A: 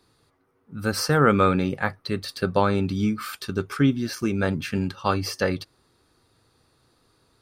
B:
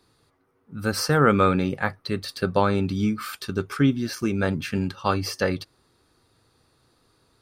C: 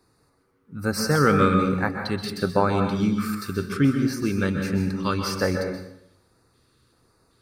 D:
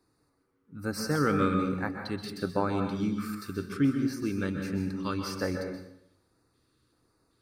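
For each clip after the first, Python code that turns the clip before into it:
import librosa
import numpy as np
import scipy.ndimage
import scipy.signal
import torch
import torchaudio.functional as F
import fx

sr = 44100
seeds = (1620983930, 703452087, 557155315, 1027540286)

y1 = x
y2 = fx.filter_lfo_notch(y1, sr, shape='square', hz=1.3, low_hz=740.0, high_hz=3200.0, q=1.3)
y2 = fx.rev_plate(y2, sr, seeds[0], rt60_s=0.82, hf_ratio=0.75, predelay_ms=115, drr_db=4.5)
y3 = fx.peak_eq(y2, sr, hz=300.0, db=7.0, octaves=0.28)
y3 = F.gain(torch.from_numpy(y3), -8.5).numpy()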